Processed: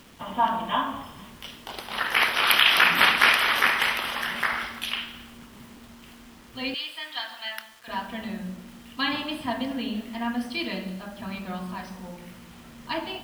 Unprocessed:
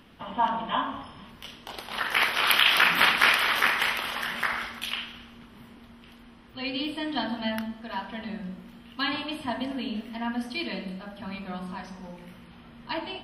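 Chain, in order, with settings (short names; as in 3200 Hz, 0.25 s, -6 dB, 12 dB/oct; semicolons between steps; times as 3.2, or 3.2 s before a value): 6.74–7.88 HPF 1300 Hz 12 dB/oct; bit-crush 9-bit; gain +2 dB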